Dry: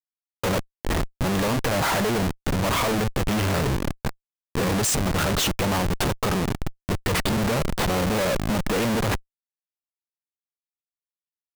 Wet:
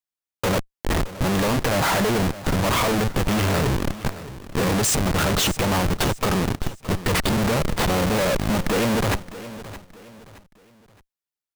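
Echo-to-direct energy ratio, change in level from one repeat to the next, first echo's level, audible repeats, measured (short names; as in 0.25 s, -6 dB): -15.0 dB, -9.0 dB, -15.5 dB, 3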